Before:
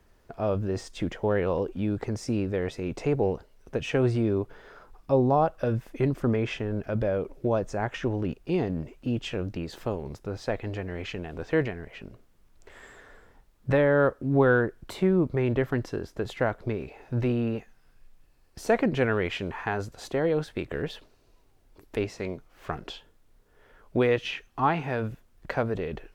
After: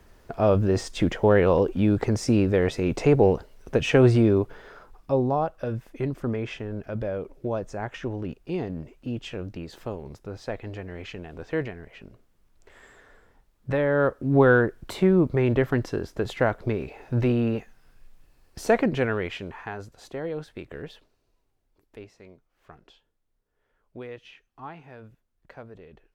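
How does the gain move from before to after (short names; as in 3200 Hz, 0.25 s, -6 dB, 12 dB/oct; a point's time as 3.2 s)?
4.16 s +7 dB
5.47 s -3 dB
13.7 s -3 dB
14.39 s +3.5 dB
18.63 s +3.5 dB
19.77 s -6.5 dB
20.83 s -6.5 dB
22.21 s -16 dB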